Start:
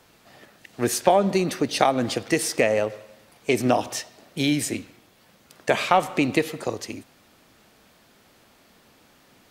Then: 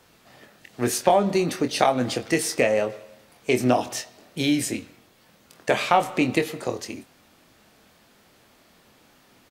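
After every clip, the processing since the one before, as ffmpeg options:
-filter_complex "[0:a]asplit=2[s0][s1];[s1]adelay=24,volume=0.398[s2];[s0][s2]amix=inputs=2:normalize=0,volume=0.891"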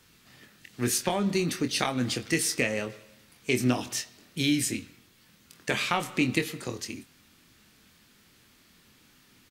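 -af "equalizer=f=660:w=0.98:g=-14"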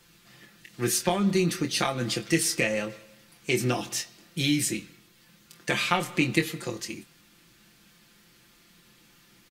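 -af "aecho=1:1:5.8:0.65"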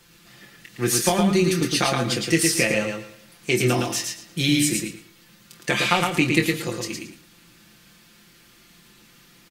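-af "aecho=1:1:112|224|336:0.631|0.126|0.0252,volume=1.58"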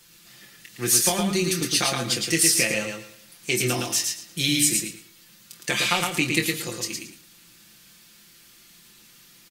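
-af "highshelf=f=3100:g=11,volume=0.531"

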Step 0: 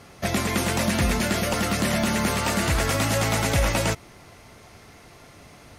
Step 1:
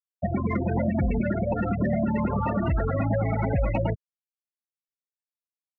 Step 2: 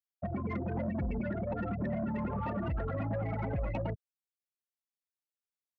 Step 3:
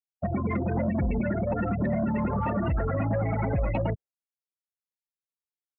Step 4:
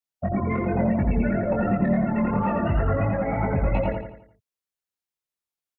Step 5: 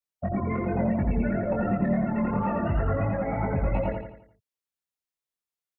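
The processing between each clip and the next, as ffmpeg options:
-af "afftfilt=real='re*gte(hypot(re,im),0.158)':imag='im*gte(hypot(re,im),0.158)':win_size=1024:overlap=0.75,alimiter=limit=0.0708:level=0:latency=1:release=212,adynamicsmooth=sensitivity=2:basefreq=4100,volume=2.11"
-af "asoftclip=type=tanh:threshold=0.106,volume=0.422"
-af "afftdn=nr=19:nf=-56,volume=2.37"
-filter_complex "[0:a]flanger=delay=20:depth=2.4:speed=2.9,asplit=2[s0][s1];[s1]aecho=0:1:86|172|258|344|430:0.562|0.242|0.104|0.0447|0.0192[s2];[s0][s2]amix=inputs=2:normalize=0,volume=1.88"
-filter_complex "[0:a]acrossover=split=2500[s0][s1];[s1]acompressor=threshold=0.00251:ratio=4:attack=1:release=60[s2];[s0][s2]amix=inputs=2:normalize=0,volume=0.708"

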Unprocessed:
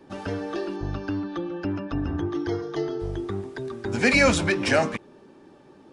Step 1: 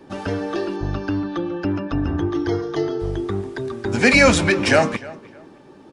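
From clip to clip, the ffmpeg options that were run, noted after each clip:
-filter_complex "[0:a]asplit=2[s0][s1];[s1]adelay=307,lowpass=f=3300:p=1,volume=0.106,asplit=2[s2][s3];[s3]adelay=307,lowpass=f=3300:p=1,volume=0.27[s4];[s0][s2][s4]amix=inputs=3:normalize=0,volume=1.88"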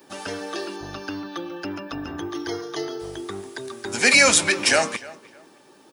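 -af "aemphasis=mode=production:type=riaa,volume=0.668"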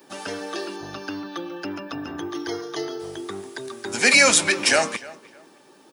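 -af "highpass=110"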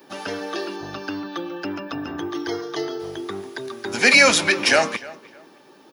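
-af "equalizer=f=8300:t=o:w=0.5:g=-14,volume=1.33"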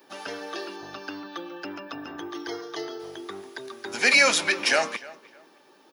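-af "lowshelf=f=220:g=-12,volume=0.596"

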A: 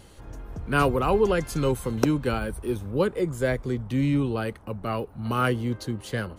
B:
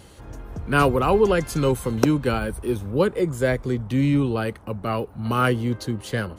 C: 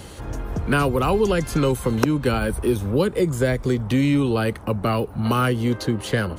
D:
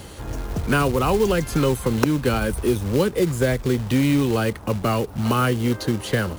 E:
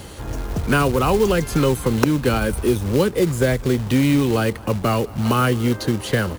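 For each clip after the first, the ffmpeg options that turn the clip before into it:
-af "highpass=40,volume=1.5"
-filter_complex "[0:a]acrossover=split=280|3200[s0][s1][s2];[s0]acompressor=threshold=0.0282:ratio=4[s3];[s1]acompressor=threshold=0.0316:ratio=4[s4];[s2]acompressor=threshold=0.00631:ratio=4[s5];[s3][s4][s5]amix=inputs=3:normalize=0,volume=2.66"
-af "acrusher=bits=4:mode=log:mix=0:aa=0.000001"
-af "aecho=1:1:209:0.0708,volume=1.26"

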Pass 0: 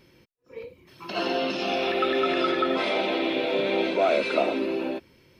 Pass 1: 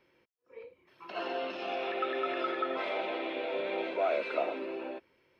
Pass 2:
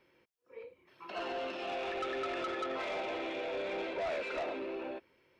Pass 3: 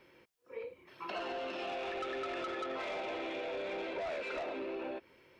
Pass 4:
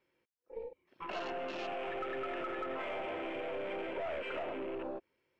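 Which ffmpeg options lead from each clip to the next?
-filter_complex "[0:a]acrossover=split=370 2900:gain=0.2 1 0.2[s0][s1][s2];[s0][s1][s2]amix=inputs=3:normalize=0,volume=0.473"
-af "asoftclip=type=tanh:threshold=0.0251"
-af "acompressor=threshold=0.00631:ratio=6,volume=2.11"
-af "aeval=exprs='0.0316*(cos(1*acos(clip(val(0)/0.0316,-1,1)))-cos(1*PI/2))+0.00282*(cos(6*acos(clip(val(0)/0.0316,-1,1)))-cos(6*PI/2))+0.000708*(cos(8*acos(clip(val(0)/0.0316,-1,1)))-cos(8*PI/2))':c=same,afwtdn=0.00447"

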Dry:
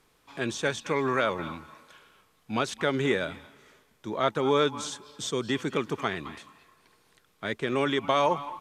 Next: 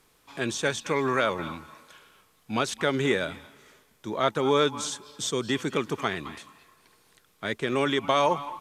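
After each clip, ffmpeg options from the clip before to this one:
-af "highshelf=f=5800:g=6,volume=1.12"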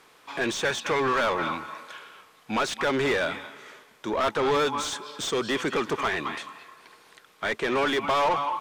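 -filter_complex "[0:a]asplit=2[s0][s1];[s1]highpass=f=720:p=1,volume=17.8,asoftclip=type=tanh:threshold=0.335[s2];[s0][s2]amix=inputs=2:normalize=0,lowpass=f=2200:p=1,volume=0.501,volume=0.501"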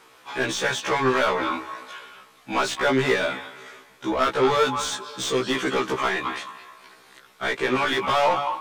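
-af "afftfilt=real='re*1.73*eq(mod(b,3),0)':imag='im*1.73*eq(mod(b,3),0)':win_size=2048:overlap=0.75,volume=1.88"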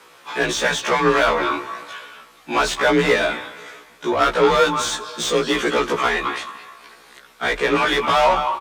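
-filter_complex "[0:a]asplit=5[s0][s1][s2][s3][s4];[s1]adelay=88,afreqshift=-40,volume=0.0631[s5];[s2]adelay=176,afreqshift=-80,volume=0.0389[s6];[s3]adelay=264,afreqshift=-120,volume=0.0243[s7];[s4]adelay=352,afreqshift=-160,volume=0.015[s8];[s0][s5][s6][s7][s8]amix=inputs=5:normalize=0,afreqshift=36,volume=1.68"

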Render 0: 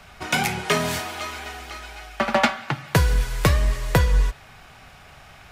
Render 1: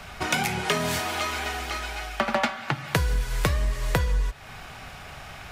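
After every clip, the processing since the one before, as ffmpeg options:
-af "acompressor=threshold=0.0316:ratio=3,volume=1.88"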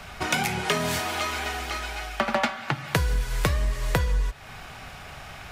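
-af anull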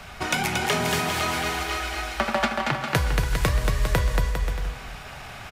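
-af "aecho=1:1:230|402.5|531.9|628.9|701.7:0.631|0.398|0.251|0.158|0.1"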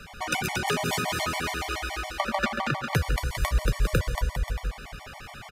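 -af "afftfilt=real='re*gt(sin(2*PI*7.1*pts/sr)*(1-2*mod(floor(b*sr/1024/590),2)),0)':imag='im*gt(sin(2*PI*7.1*pts/sr)*(1-2*mod(floor(b*sr/1024/590),2)),0)':win_size=1024:overlap=0.75"

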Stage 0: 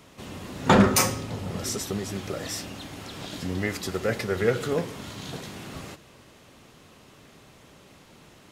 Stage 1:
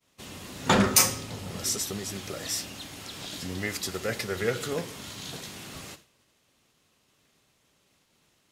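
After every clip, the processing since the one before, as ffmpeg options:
-af "highshelf=f=2300:g=10,agate=range=0.0224:threshold=0.0112:ratio=3:detection=peak,volume=0.531"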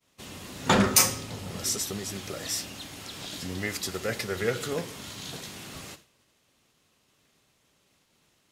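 -af anull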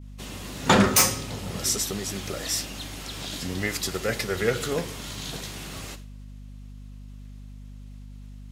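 -filter_complex "[0:a]aeval=exprs='val(0)+0.00631*(sin(2*PI*50*n/s)+sin(2*PI*2*50*n/s)/2+sin(2*PI*3*50*n/s)/3+sin(2*PI*4*50*n/s)/4+sin(2*PI*5*50*n/s)/5)':c=same,acrossover=split=2000[s0][s1];[s1]asoftclip=type=hard:threshold=0.141[s2];[s0][s2]amix=inputs=2:normalize=0,volume=1.5"

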